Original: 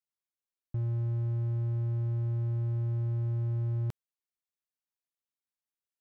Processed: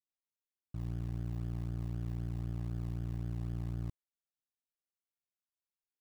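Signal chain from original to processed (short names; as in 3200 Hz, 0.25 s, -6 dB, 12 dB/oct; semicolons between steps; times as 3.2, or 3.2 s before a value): cycle switcher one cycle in 2, muted; gate -30 dBFS, range -12 dB; in parallel at -11 dB: decimation with a swept rate 38×, swing 60% 3.9 Hz; on the sum: gain +4.5 dB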